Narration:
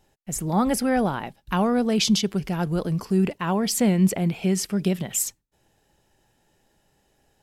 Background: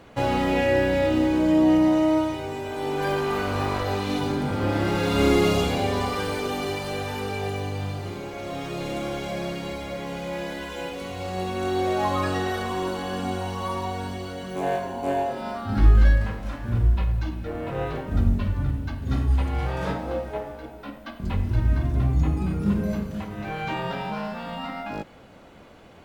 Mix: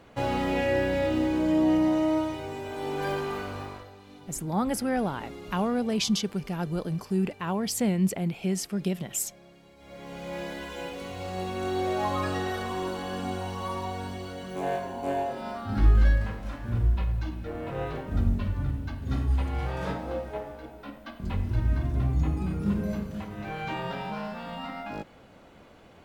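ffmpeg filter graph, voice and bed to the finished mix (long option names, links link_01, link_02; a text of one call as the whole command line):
ffmpeg -i stem1.wav -i stem2.wav -filter_complex "[0:a]adelay=4000,volume=-5.5dB[link_01];[1:a]volume=15dB,afade=type=out:start_time=3.1:duration=0.81:silence=0.112202,afade=type=in:start_time=9.76:duration=0.63:silence=0.105925[link_02];[link_01][link_02]amix=inputs=2:normalize=0" out.wav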